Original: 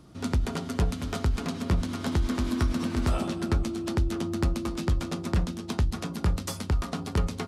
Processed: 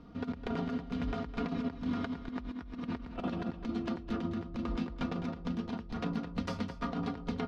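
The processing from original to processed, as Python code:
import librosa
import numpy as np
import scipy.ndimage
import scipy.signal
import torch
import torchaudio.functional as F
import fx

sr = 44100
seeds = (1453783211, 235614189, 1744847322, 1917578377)

y = x + 0.67 * np.pad(x, (int(4.2 * sr / 1000.0), 0))[:len(x)]
y = fx.over_compress(y, sr, threshold_db=-30.0, ratio=-0.5)
y = fx.air_absorb(y, sr, metres=260.0)
y = y + 10.0 ** (-11.5 / 20.0) * np.pad(y, (int(209 * sr / 1000.0), 0))[:len(y)]
y = y * 10.0 ** (-5.5 / 20.0)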